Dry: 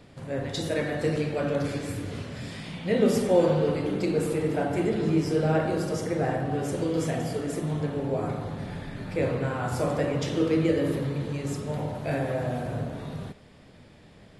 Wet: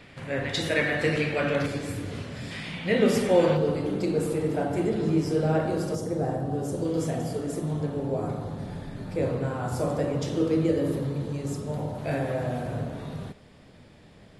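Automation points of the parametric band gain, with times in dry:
parametric band 2,200 Hz 1.5 octaves
+11 dB
from 0:01.66 +1 dB
from 0:02.51 +7 dB
from 0:03.57 −4 dB
from 0:05.95 −14 dB
from 0:06.85 −7 dB
from 0:11.98 −0.5 dB

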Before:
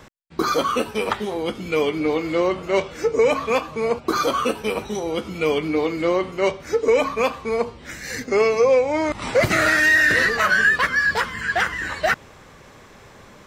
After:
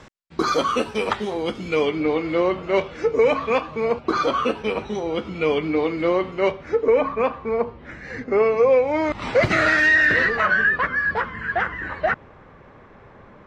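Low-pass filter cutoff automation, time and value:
0:01.63 7,300 Hz
0:02.06 3,600 Hz
0:06.35 3,600 Hz
0:06.94 1,800 Hz
0:08.43 1,800 Hz
0:09.10 4,100 Hz
0:09.80 4,100 Hz
0:10.78 1,700 Hz

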